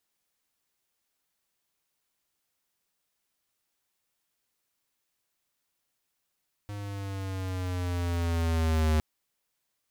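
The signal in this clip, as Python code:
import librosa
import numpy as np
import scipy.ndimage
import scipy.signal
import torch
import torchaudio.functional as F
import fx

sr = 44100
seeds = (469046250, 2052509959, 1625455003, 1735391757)

y = fx.riser_tone(sr, length_s=2.31, level_db=-23.5, wave='square', hz=103.0, rise_st=-5.0, swell_db=14.0)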